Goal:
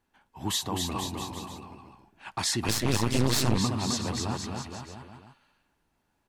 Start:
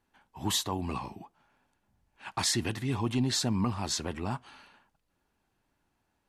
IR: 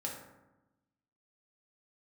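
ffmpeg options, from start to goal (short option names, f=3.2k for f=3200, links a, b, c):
-filter_complex "[0:a]aecho=1:1:260|481|668.8|828.5|964.2:0.631|0.398|0.251|0.158|0.1,asettb=1/sr,asplit=3[a][b][c];[a]atrim=end=2.684[d];[b]atrim=start=2.68:end=3.58,asetpts=PTS-STARTPTS,afade=t=in:d=0.004:c=qsin,afade=t=out:st=0.896:d=0.004:c=qsin,aeval=exprs='0.224*(cos(1*acos(clip(val(0)/0.224,-1,1)))-cos(1*PI/2))+0.0562*(cos(6*acos(clip(val(0)/0.224,-1,1)))-cos(6*PI/2))':c=same[e];[c]atrim=start=3.576[f];[d][e]acrossfade=d=0.004:c1=hsin:c2=qsin[g];[g][f]acrossfade=d=0.004:c1=qsin:c2=hsin"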